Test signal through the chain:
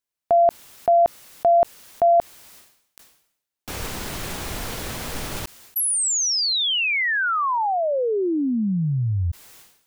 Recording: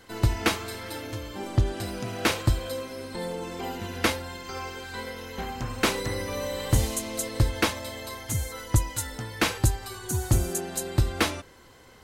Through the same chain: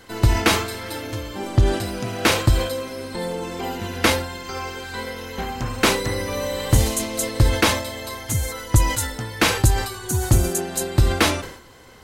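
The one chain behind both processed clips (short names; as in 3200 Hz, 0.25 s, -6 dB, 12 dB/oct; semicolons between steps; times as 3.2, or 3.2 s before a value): sustainer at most 83 dB/s; gain +5.5 dB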